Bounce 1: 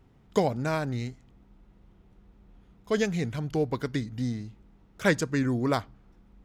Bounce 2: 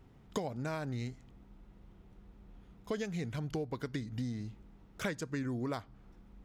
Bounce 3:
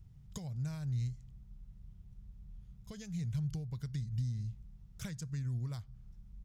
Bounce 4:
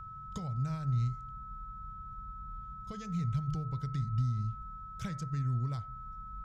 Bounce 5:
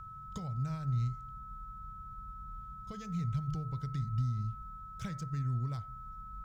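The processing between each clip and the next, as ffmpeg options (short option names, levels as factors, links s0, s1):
-af "acompressor=threshold=0.02:ratio=6"
-af "firequalizer=gain_entry='entry(140,0);entry(270,-24);entry(5500,-7)':delay=0.05:min_phase=1,volume=1.88"
-af "aemphasis=mode=reproduction:type=50fm,bandreject=f=74.94:t=h:w=4,bandreject=f=149.88:t=h:w=4,bandreject=f=224.82:t=h:w=4,bandreject=f=299.76:t=h:w=4,bandreject=f=374.7:t=h:w=4,bandreject=f=449.64:t=h:w=4,bandreject=f=524.58:t=h:w=4,bandreject=f=599.52:t=h:w=4,bandreject=f=674.46:t=h:w=4,bandreject=f=749.4:t=h:w=4,bandreject=f=824.34:t=h:w=4,bandreject=f=899.28:t=h:w=4,bandreject=f=974.22:t=h:w=4,bandreject=f=1049.16:t=h:w=4,bandreject=f=1124.1:t=h:w=4,bandreject=f=1199.04:t=h:w=4,bandreject=f=1273.98:t=h:w=4,bandreject=f=1348.92:t=h:w=4,bandreject=f=1423.86:t=h:w=4,bandreject=f=1498.8:t=h:w=4,bandreject=f=1573.74:t=h:w=4,bandreject=f=1648.68:t=h:w=4,bandreject=f=1723.62:t=h:w=4,bandreject=f=1798.56:t=h:w=4,bandreject=f=1873.5:t=h:w=4,bandreject=f=1948.44:t=h:w=4,bandreject=f=2023.38:t=h:w=4,bandreject=f=2098.32:t=h:w=4,bandreject=f=2173.26:t=h:w=4,bandreject=f=2248.2:t=h:w=4,aeval=exprs='val(0)+0.00398*sin(2*PI*1300*n/s)':c=same,volume=1.58"
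-af "volume=0.841" -ar 44100 -c:a adpcm_ima_wav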